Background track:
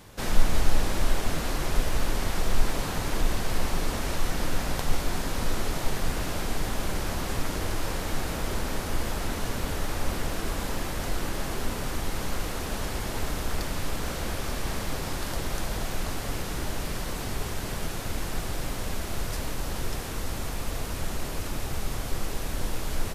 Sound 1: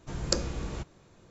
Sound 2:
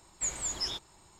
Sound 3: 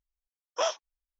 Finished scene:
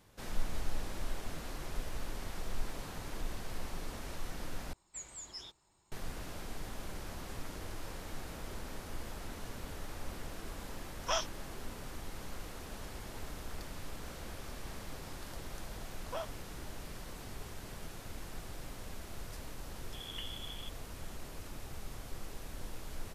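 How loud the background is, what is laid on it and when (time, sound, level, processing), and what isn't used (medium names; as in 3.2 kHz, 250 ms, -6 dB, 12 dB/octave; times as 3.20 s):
background track -14 dB
4.73 s: replace with 2 -13 dB
10.50 s: add 3 -2 dB + high-pass 890 Hz
15.54 s: add 3 -12 dB + low-pass 2.8 kHz
19.86 s: add 1 -15 dB + frequency inversion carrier 3.4 kHz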